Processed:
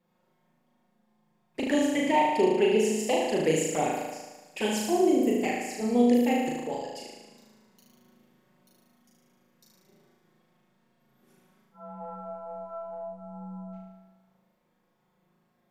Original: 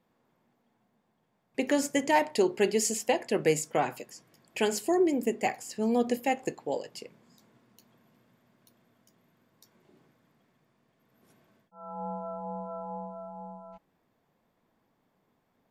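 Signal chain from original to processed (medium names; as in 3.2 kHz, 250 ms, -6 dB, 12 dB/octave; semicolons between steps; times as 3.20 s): 1.79–2.99 s: resonant high shelf 3.5 kHz -7 dB, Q 1.5; touch-sensitive flanger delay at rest 5.6 ms, full sweep at -22 dBFS; flutter echo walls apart 6.4 m, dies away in 1.2 s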